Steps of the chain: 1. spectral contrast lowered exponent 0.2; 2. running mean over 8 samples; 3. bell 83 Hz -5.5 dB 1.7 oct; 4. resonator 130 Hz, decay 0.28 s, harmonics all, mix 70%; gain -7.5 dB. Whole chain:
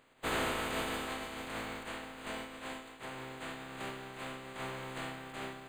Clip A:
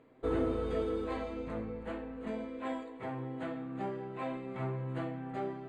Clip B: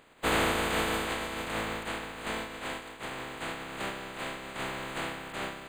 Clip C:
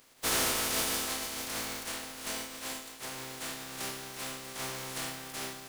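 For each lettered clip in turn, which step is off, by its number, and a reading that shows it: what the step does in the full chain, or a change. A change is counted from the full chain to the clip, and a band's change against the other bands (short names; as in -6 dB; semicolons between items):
1, 4 kHz band -20.0 dB; 4, loudness change +6.5 LU; 2, 8 kHz band +15.5 dB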